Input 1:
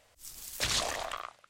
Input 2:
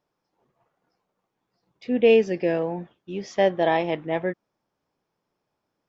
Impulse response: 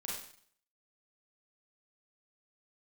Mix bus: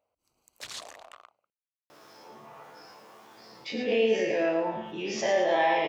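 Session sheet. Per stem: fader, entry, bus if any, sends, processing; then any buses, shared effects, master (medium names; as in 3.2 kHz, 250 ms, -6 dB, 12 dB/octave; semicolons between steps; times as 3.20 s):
-8.5 dB, 0.00 s, no send, no echo send, local Wiener filter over 25 samples
-0.5 dB, 1.90 s, no send, echo send -7.5 dB, every event in the spectrogram widened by 120 ms; chord resonator D2 fifth, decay 0.25 s; level flattener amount 50%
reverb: none
echo: feedback delay 110 ms, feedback 39%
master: high-pass 420 Hz 6 dB/octave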